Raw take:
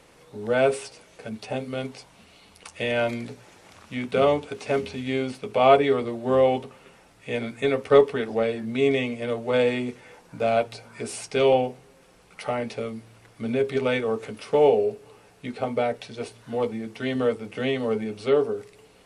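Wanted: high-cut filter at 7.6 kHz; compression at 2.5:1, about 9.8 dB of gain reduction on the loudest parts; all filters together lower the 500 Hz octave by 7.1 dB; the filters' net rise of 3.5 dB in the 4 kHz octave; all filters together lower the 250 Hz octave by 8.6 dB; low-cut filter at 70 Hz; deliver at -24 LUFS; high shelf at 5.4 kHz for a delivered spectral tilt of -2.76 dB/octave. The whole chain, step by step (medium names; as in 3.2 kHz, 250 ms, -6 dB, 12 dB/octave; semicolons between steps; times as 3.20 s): high-pass 70 Hz; low-pass 7.6 kHz; peaking EQ 250 Hz -8 dB; peaking EQ 500 Hz -6.5 dB; peaking EQ 4 kHz +7.5 dB; treble shelf 5.4 kHz -7 dB; compression 2.5:1, threshold -30 dBFS; trim +10.5 dB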